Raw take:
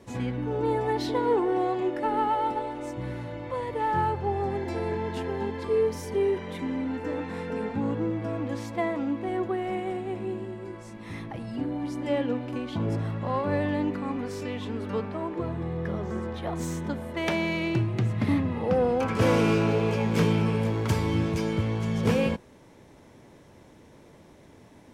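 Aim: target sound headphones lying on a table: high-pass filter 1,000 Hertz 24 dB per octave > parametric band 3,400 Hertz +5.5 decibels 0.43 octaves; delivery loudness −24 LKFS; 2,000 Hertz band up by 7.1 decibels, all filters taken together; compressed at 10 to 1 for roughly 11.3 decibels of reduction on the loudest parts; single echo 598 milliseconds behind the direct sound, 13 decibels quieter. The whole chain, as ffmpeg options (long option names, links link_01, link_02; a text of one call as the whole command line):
ffmpeg -i in.wav -af "equalizer=frequency=2000:width_type=o:gain=8,acompressor=threshold=-29dB:ratio=10,highpass=frequency=1000:width=0.5412,highpass=frequency=1000:width=1.3066,equalizer=frequency=3400:width_type=o:width=0.43:gain=5.5,aecho=1:1:598:0.224,volume=15.5dB" out.wav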